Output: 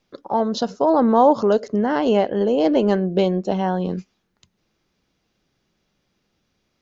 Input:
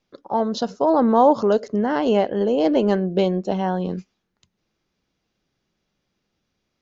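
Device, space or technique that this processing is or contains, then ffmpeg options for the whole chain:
parallel compression: -filter_complex "[0:a]asplit=2[link_01][link_02];[link_02]acompressor=threshold=-33dB:ratio=6,volume=-3dB[link_03];[link_01][link_03]amix=inputs=2:normalize=0"

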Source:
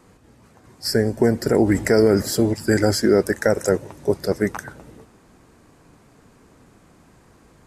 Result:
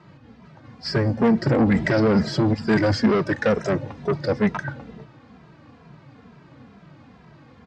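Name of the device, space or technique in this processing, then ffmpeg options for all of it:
barber-pole flanger into a guitar amplifier: -filter_complex "[0:a]asplit=2[link_01][link_02];[link_02]adelay=2.6,afreqshift=-2.2[link_03];[link_01][link_03]amix=inputs=2:normalize=1,asoftclip=type=tanh:threshold=-20dB,highpass=77,equalizer=frequency=140:width_type=q:width=4:gain=8,equalizer=frequency=220:width_type=q:width=4:gain=3,equalizer=frequency=380:width_type=q:width=4:gain=-6,lowpass=frequency=4400:width=0.5412,lowpass=frequency=4400:width=1.3066,volume=6.5dB"

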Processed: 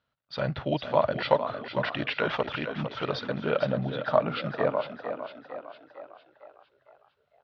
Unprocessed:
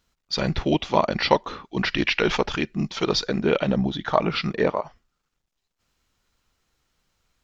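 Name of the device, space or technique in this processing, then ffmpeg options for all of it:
frequency-shifting delay pedal into a guitar cabinet: -filter_complex "[0:a]asplit=7[link_01][link_02][link_03][link_04][link_05][link_06][link_07];[link_02]adelay=455,afreqshift=41,volume=-9dB[link_08];[link_03]adelay=910,afreqshift=82,volume=-15.2dB[link_09];[link_04]adelay=1365,afreqshift=123,volume=-21.4dB[link_10];[link_05]adelay=1820,afreqshift=164,volume=-27.6dB[link_11];[link_06]adelay=2275,afreqshift=205,volume=-33.8dB[link_12];[link_07]adelay=2730,afreqshift=246,volume=-40dB[link_13];[link_01][link_08][link_09][link_10][link_11][link_12][link_13]amix=inputs=7:normalize=0,highpass=100,equalizer=frequency=130:width_type=q:width=4:gain=8,equalizer=frequency=190:width_type=q:width=4:gain=-5,equalizer=frequency=360:width_type=q:width=4:gain=-7,equalizer=frequency=590:width_type=q:width=4:gain=8,equalizer=frequency=1400:width_type=q:width=4:gain=5,equalizer=frequency=2300:width_type=q:width=4:gain=-4,lowpass=frequency=3700:width=0.5412,lowpass=frequency=3700:width=1.3066,volume=-6.5dB"

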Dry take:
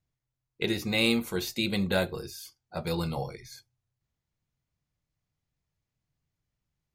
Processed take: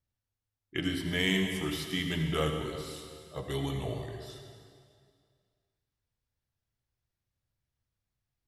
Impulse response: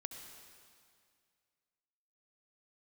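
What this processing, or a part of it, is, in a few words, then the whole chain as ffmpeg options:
slowed and reverbed: -filter_complex "[0:a]asetrate=36162,aresample=44100[link_01];[1:a]atrim=start_sample=2205[link_02];[link_01][link_02]afir=irnorm=-1:irlink=0"

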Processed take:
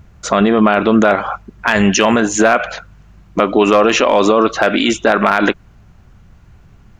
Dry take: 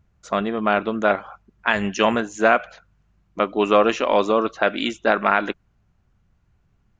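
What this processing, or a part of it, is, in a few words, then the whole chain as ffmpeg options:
loud club master: -af "acompressor=threshold=-23dB:ratio=1.5,asoftclip=type=hard:threshold=-10dB,alimiter=level_in=20dB:limit=-1dB:release=50:level=0:latency=1,volume=-1dB"

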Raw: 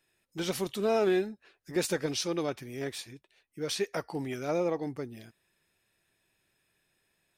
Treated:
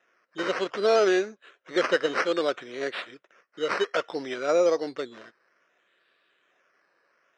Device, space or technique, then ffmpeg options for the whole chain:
circuit-bent sampling toy: -af "acrusher=samples=10:mix=1:aa=0.000001:lfo=1:lforange=6:lforate=0.61,highpass=480,equalizer=frequency=520:width_type=q:width=4:gain=4,equalizer=frequency=840:width_type=q:width=4:gain=-10,equalizer=frequency=1400:width_type=q:width=4:gain=4,equalizer=frequency=2500:width_type=q:width=4:gain=-3,equalizer=frequency=4600:width_type=q:width=4:gain=-6,lowpass=frequency=5200:width=0.5412,lowpass=frequency=5200:width=1.3066,volume=9dB"

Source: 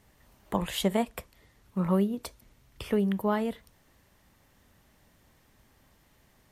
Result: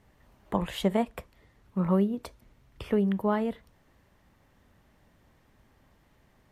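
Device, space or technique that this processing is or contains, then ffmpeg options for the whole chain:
through cloth: -af "highshelf=frequency=3700:gain=-11,volume=1dB"

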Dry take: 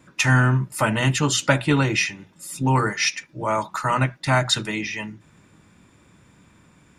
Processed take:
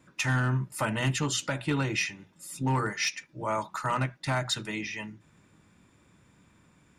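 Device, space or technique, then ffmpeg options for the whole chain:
limiter into clipper: -af "alimiter=limit=-9.5dB:level=0:latency=1:release=208,asoftclip=type=hard:threshold=-12.5dB,volume=-7dB"

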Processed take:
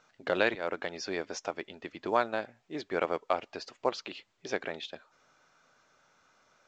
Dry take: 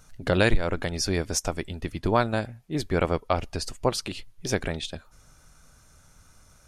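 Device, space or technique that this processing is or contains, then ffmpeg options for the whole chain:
telephone: -af "highpass=380,lowpass=3500,volume=-3.5dB" -ar 16000 -c:a pcm_mulaw

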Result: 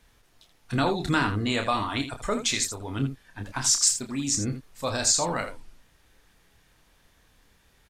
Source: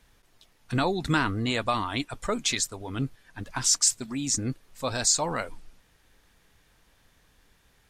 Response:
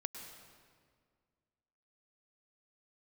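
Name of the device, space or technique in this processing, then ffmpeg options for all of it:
slapback doubling: -filter_complex "[0:a]asplit=3[link_01][link_02][link_03];[link_02]adelay=29,volume=-7dB[link_04];[link_03]adelay=81,volume=-10dB[link_05];[link_01][link_04][link_05]amix=inputs=3:normalize=0"

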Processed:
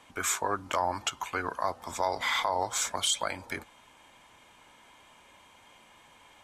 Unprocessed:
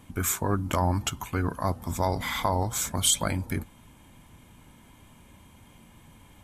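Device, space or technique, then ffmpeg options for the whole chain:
DJ mixer with the lows and highs turned down: -filter_complex "[0:a]acrossover=split=440 7800:gain=0.0891 1 0.158[link_01][link_02][link_03];[link_01][link_02][link_03]amix=inputs=3:normalize=0,alimiter=limit=-19dB:level=0:latency=1:release=173,volume=3dB"

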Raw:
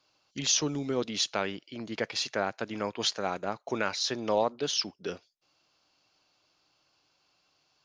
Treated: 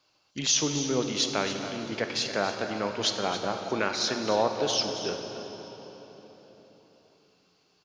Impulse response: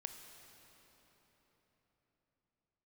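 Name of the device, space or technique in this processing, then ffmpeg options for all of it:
cave: -filter_complex "[0:a]aecho=1:1:276:0.251[link_01];[1:a]atrim=start_sample=2205[link_02];[link_01][link_02]afir=irnorm=-1:irlink=0,volume=6dB"

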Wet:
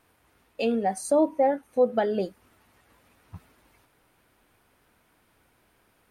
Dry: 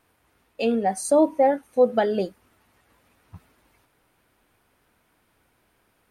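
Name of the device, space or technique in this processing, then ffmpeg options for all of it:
parallel compression: -filter_complex "[0:a]asplit=2[link_01][link_02];[link_02]acompressor=threshold=-32dB:ratio=6,volume=-1dB[link_03];[link_01][link_03]amix=inputs=2:normalize=0,asettb=1/sr,asplit=3[link_04][link_05][link_06];[link_04]atrim=end=0.984[link_07];[link_05]atrim=start=0.98:end=2.23,asetpts=PTS-STARTPTS,afade=type=in:duration=0.004:curve=qsin,afade=type=out:start_time=1.246:duration=0.004:curve=qsin,equalizer=frequency=7500:width=0.41:gain=-4[link_08];[link_06]atrim=start=2.226[link_09];[link_07][link_08]acrossfade=duration=0.004:curve1=hsin:curve2=qsin[link_10];[link_10][link_09]acrossfade=duration=0.004:curve1=qsin:curve2=hsin,volume=-4.5dB"

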